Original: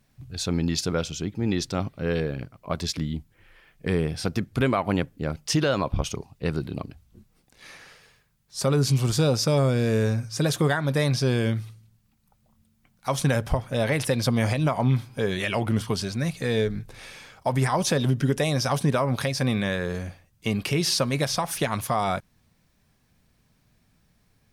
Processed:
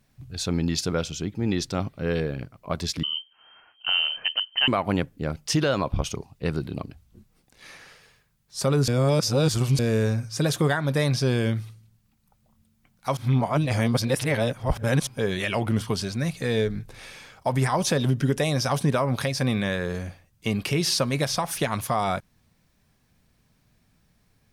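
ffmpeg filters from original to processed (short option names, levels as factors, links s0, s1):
-filter_complex "[0:a]asettb=1/sr,asplit=3[s0][s1][s2];[s0]atrim=end=3.034[s3];[s1]atrim=start=3.03:end=4.68,asetpts=PTS-STARTPTS,afade=t=in:d=0.004:c=qsin,afade=t=out:st=1.646:d=0.004:c=qsin,lowpass=f=2700:t=q:w=0.5098,lowpass=f=2700:t=q:w=0.6013,lowpass=f=2700:t=q:w=0.9,lowpass=f=2700:t=q:w=2.563,afreqshift=-3200[s4];[s2]atrim=start=4.676[s5];[s3][s4]acrossfade=d=0.004:c1=hsin:c2=qsin[s6];[s6][s5]acrossfade=d=0.004:c1=qsin:c2=hsin,asplit=5[s7][s8][s9][s10][s11];[s7]atrim=end=8.882[s12];[s8]atrim=start=8.878:end=9.792,asetpts=PTS-STARTPTS,areverse[s13];[s9]atrim=start=9.788:end=13.172[s14];[s10]atrim=start=13.168:end=15.072,asetpts=PTS-STARTPTS,areverse[s15];[s11]atrim=start=15.068[s16];[s12][s13]acrossfade=d=0.004:c1=hsin:c2=hsin[s17];[s17][s14]acrossfade=d=0.004:c1=hsin:c2=hsin[s18];[s18][s15]acrossfade=d=0.004:c1=hsin:c2=hsin[s19];[s19][s16]acrossfade=d=0.004:c1=hsin:c2=hsin"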